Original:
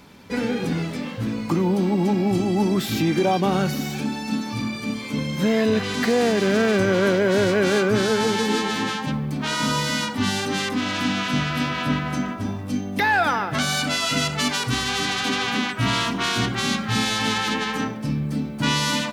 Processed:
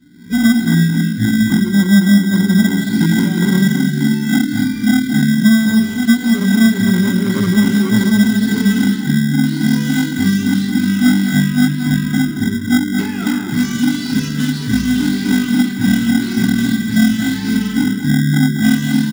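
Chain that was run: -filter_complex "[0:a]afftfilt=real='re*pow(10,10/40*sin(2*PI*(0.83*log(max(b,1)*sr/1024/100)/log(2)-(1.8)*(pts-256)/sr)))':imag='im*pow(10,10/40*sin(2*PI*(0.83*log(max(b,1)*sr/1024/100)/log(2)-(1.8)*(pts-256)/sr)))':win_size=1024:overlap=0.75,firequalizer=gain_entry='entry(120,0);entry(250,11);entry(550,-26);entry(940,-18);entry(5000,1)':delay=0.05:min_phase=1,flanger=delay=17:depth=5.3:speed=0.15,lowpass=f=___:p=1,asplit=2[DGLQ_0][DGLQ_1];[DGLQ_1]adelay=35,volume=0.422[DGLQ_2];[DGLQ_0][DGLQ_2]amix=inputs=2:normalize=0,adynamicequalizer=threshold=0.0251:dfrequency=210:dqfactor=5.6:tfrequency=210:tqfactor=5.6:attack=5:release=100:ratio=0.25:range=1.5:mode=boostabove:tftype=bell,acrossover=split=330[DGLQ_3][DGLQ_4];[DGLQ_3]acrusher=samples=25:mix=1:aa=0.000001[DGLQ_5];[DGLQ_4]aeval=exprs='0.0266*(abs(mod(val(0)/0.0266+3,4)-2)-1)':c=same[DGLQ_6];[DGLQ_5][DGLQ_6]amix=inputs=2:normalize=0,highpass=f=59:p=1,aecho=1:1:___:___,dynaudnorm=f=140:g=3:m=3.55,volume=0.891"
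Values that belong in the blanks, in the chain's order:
1400, 223, 0.422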